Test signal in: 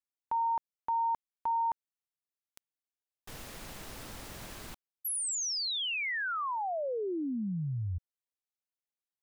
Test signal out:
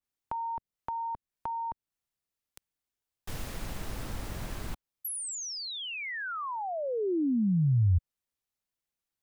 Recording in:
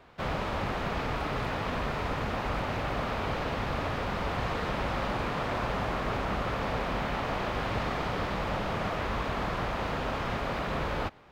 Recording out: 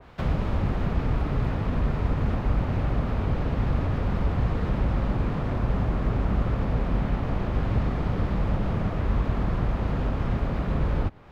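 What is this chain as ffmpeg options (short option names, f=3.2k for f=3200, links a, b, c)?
-filter_complex "[0:a]lowshelf=f=160:g=9.5,acrossover=split=390[a][b];[b]acompressor=threshold=-37dB:ratio=10:attack=6.1:release=551:knee=2.83:detection=peak[c];[a][c]amix=inputs=2:normalize=0,adynamicequalizer=threshold=0.00141:dfrequency=2300:dqfactor=0.7:tfrequency=2300:tqfactor=0.7:attack=5:release=100:ratio=0.375:range=2:mode=cutabove:tftype=highshelf,volume=4dB"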